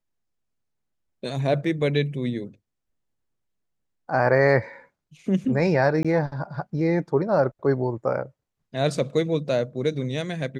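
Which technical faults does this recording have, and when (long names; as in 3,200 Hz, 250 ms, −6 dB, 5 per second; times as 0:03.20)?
0:06.03–0:06.05: drop-out 16 ms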